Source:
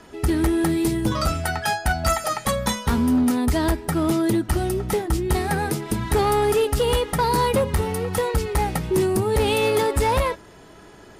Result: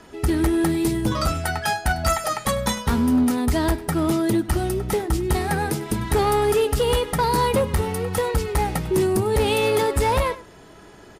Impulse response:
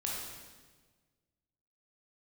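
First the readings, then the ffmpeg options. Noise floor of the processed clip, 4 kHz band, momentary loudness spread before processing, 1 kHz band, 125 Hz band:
−46 dBFS, 0.0 dB, 5 LU, 0.0 dB, 0.0 dB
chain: -filter_complex "[0:a]asplit=2[link_01][link_02];[link_02]adelay=99.13,volume=-18dB,highshelf=frequency=4000:gain=-2.23[link_03];[link_01][link_03]amix=inputs=2:normalize=0"

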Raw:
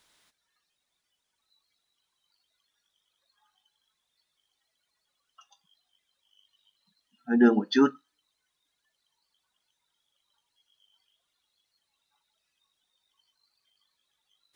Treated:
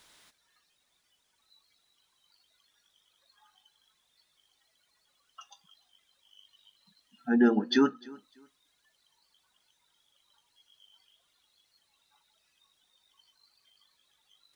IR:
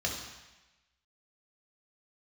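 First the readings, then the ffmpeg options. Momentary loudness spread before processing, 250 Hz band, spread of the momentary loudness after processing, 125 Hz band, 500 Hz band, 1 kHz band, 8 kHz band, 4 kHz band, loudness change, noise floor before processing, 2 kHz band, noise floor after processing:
5 LU, −2.5 dB, 7 LU, −2.0 dB, −2.5 dB, −2.5 dB, can't be measured, +1.0 dB, −2.5 dB, −81 dBFS, −1.5 dB, −74 dBFS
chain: -filter_complex "[0:a]acompressor=threshold=-42dB:ratio=1.5,asplit=2[link_01][link_02];[link_02]aecho=0:1:300|600:0.0708|0.0163[link_03];[link_01][link_03]amix=inputs=2:normalize=0,volume=6.5dB"

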